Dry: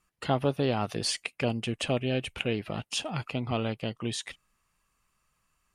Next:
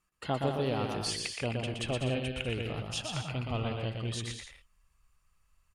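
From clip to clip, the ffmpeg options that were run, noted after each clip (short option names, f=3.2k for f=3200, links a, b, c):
-filter_complex "[0:a]asubboost=boost=6:cutoff=92,asplit=2[a][b];[b]aecho=0:1:120|198|248.7|281.7|303.1:0.631|0.398|0.251|0.158|0.1[c];[a][c]amix=inputs=2:normalize=0,volume=-5dB"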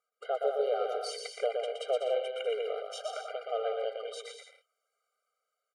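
-af "tiltshelf=f=1.3k:g=7,dynaudnorm=f=200:g=7:m=3.5dB,afftfilt=real='re*eq(mod(floor(b*sr/1024/400),2),1)':imag='im*eq(mod(floor(b*sr/1024/400),2),1)':win_size=1024:overlap=0.75,volume=-1dB"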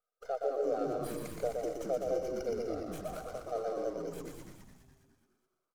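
-filter_complex "[0:a]asplit=7[a][b][c][d][e][f][g];[b]adelay=209,afreqshift=-140,volume=-6.5dB[h];[c]adelay=418,afreqshift=-280,volume=-12.3dB[i];[d]adelay=627,afreqshift=-420,volume=-18.2dB[j];[e]adelay=836,afreqshift=-560,volume=-24dB[k];[f]adelay=1045,afreqshift=-700,volume=-29.9dB[l];[g]adelay=1254,afreqshift=-840,volume=-35.7dB[m];[a][h][i][j][k][l][m]amix=inputs=7:normalize=0,acrossover=split=1800[n][o];[o]aeval=exprs='abs(val(0))':c=same[p];[n][p]amix=inputs=2:normalize=0,volume=-3.5dB"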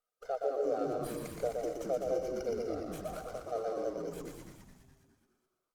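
-ar 48000 -c:a libopus -b:a 64k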